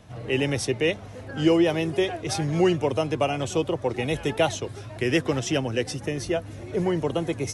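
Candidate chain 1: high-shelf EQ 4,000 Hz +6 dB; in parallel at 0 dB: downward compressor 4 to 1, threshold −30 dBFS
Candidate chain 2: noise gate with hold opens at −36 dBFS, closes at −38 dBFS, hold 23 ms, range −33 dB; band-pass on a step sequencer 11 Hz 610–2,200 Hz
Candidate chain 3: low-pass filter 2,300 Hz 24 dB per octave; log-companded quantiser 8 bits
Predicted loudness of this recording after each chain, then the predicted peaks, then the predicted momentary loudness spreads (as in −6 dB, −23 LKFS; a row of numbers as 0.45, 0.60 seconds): −22.0, −37.5, −26.0 LKFS; −6.5, −15.5, −9.5 dBFS; 6, 13, 8 LU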